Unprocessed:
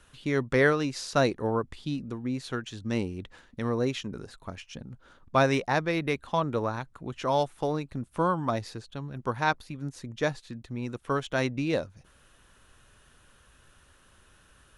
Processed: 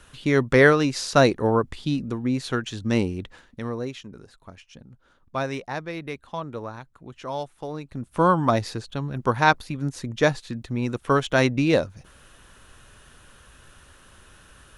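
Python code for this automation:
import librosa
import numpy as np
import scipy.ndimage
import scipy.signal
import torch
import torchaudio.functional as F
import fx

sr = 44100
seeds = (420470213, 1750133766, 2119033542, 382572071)

y = fx.gain(x, sr, db=fx.line((3.1, 7.0), (3.96, -5.0), (7.67, -5.0), (8.3, 8.0)))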